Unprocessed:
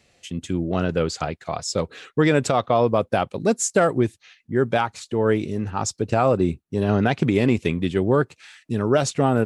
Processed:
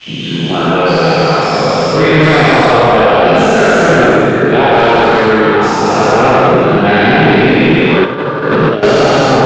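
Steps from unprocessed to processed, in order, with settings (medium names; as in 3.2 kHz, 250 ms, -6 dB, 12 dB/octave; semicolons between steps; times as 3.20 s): every event in the spectrogram widened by 480 ms; tilt EQ +1.5 dB/octave; plate-style reverb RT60 1.8 s, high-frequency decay 0.8×, DRR -4 dB; 8.04–8.83 s: compressor with a negative ratio -15 dBFS, ratio -0.5; resonant low shelf 110 Hz -7.5 dB, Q 3; waveshaping leveller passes 3; low-pass 4 kHz 24 dB/octave; trim -7.5 dB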